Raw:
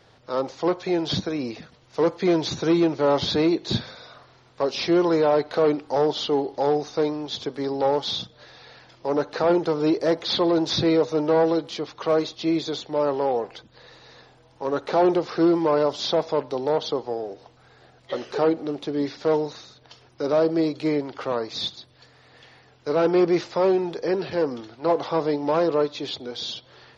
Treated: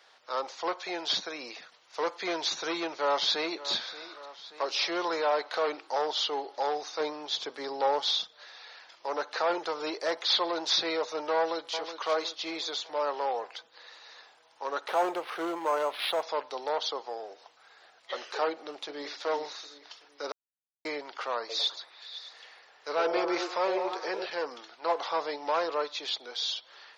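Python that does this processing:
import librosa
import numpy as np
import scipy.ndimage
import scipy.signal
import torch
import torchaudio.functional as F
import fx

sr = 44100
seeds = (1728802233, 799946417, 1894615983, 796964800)

y = fx.echo_throw(x, sr, start_s=2.85, length_s=0.82, ms=580, feedback_pct=65, wet_db=-16.0)
y = fx.low_shelf(y, sr, hz=490.0, db=6.0, at=(7.0, 8.11))
y = fx.echo_throw(y, sr, start_s=11.36, length_s=0.55, ms=370, feedback_pct=50, wet_db=-9.5)
y = fx.resample_linear(y, sr, factor=6, at=(14.88, 16.23))
y = fx.echo_throw(y, sr, start_s=18.5, length_s=0.69, ms=380, feedback_pct=40, wet_db=-9.0)
y = fx.echo_stepped(y, sr, ms=102, hz=440.0, octaves=0.7, feedback_pct=70, wet_db=-1.0, at=(21.39, 24.26))
y = fx.edit(y, sr, fx.silence(start_s=20.32, length_s=0.53), tone=tone)
y = scipy.signal.sosfilt(scipy.signal.butter(2, 880.0, 'highpass', fs=sr, output='sos'), y)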